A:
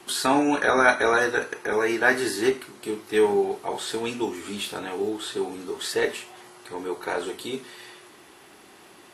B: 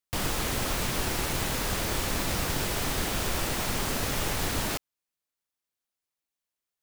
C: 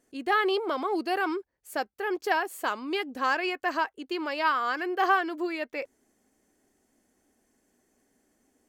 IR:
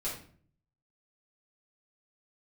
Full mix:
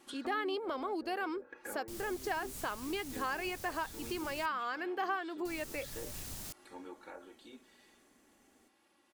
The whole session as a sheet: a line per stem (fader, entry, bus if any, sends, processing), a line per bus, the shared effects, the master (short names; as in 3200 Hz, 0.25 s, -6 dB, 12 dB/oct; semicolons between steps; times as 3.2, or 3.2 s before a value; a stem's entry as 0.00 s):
6.77 s -15.5 dB -> 7.18 s -23 dB, 0.00 s, no send, comb 3.6 ms, depth 76%; treble ducked by the level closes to 350 Hz, closed at -17.5 dBFS
-20.0 dB, 1.75 s, muted 4.46–5.45, no send, tone controls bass +8 dB, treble +13 dB
+1.0 dB, 0.00 s, no send, dry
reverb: off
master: compressor 2:1, threshold -42 dBFS, peak gain reduction 14 dB